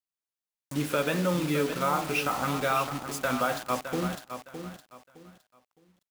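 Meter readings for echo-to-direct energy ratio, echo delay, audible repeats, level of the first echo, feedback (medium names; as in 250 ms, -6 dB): -9.0 dB, 613 ms, 3, -9.5 dB, 26%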